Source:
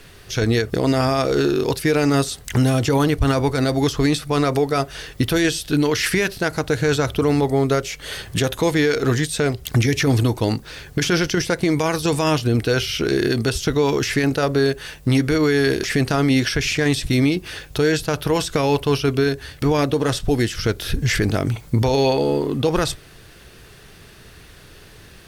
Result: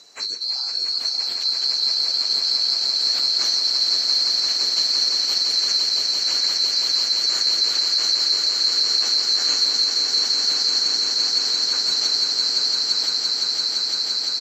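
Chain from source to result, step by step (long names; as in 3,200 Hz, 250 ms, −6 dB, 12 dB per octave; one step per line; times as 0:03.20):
neighbouring bands swapped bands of 4,000 Hz
hum removal 344.9 Hz, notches 13
dynamic equaliser 4,500 Hz, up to +6 dB, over −30 dBFS, Q 1.4
downward compressor 5 to 1, threshold −18 dBFS, peak gain reduction 10.5 dB
time stretch by phase vocoder 0.57×
band-pass filter 210–7,400 Hz
double-tracking delay 43 ms −13.5 dB
echo that builds up and dies away 171 ms, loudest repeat 8, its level −6 dB
level −1.5 dB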